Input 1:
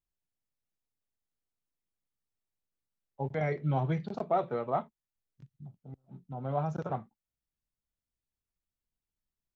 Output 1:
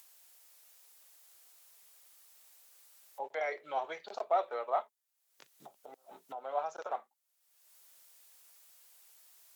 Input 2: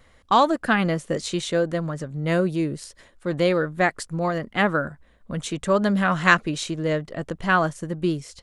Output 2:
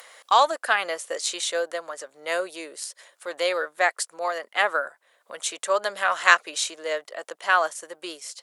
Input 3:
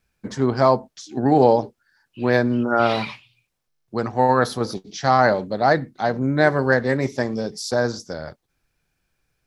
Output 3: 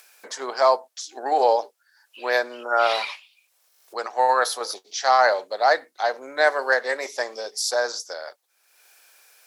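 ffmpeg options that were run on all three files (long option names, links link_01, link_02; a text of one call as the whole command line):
ffmpeg -i in.wav -af "highpass=frequency=530:width=0.5412,highpass=frequency=530:width=1.3066,aemphasis=mode=production:type=cd,acompressor=mode=upward:threshold=-39dB:ratio=2.5" out.wav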